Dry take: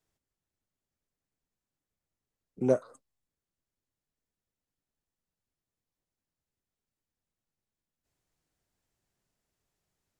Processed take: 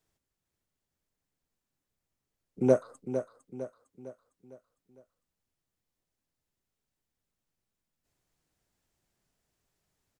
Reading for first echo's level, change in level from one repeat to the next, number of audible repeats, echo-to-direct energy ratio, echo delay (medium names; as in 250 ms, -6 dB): -9.5 dB, -6.5 dB, 4, -8.5 dB, 455 ms